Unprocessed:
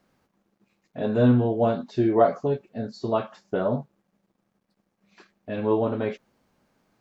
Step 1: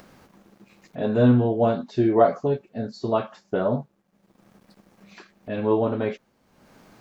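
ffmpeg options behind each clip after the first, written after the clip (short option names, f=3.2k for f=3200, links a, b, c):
-af "acompressor=mode=upward:threshold=-40dB:ratio=2.5,volume=1.5dB"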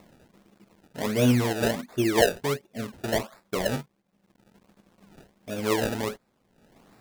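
-af "acrusher=samples=28:mix=1:aa=0.000001:lfo=1:lforange=28:lforate=1.4,volume=-4dB"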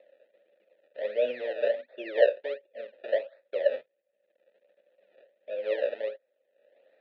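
-filter_complex "[0:a]asplit=3[a][b][c];[a]bandpass=f=530:t=q:w=8,volume=0dB[d];[b]bandpass=f=1.84k:t=q:w=8,volume=-6dB[e];[c]bandpass=f=2.48k:t=q:w=8,volume=-9dB[f];[d][e][f]amix=inputs=3:normalize=0,highpass=400,equalizer=f=590:t=q:w=4:g=10,equalizer=f=1.2k:t=q:w=4:g=4,equalizer=f=3.8k:t=q:w=4:g=9,lowpass=f=3.9k:w=0.5412,lowpass=f=3.9k:w=1.3066,volume=2dB"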